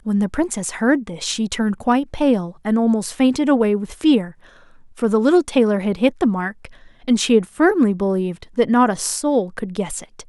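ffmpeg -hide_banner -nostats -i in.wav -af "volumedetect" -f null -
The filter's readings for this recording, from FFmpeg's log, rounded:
mean_volume: -18.7 dB
max_volume: -2.6 dB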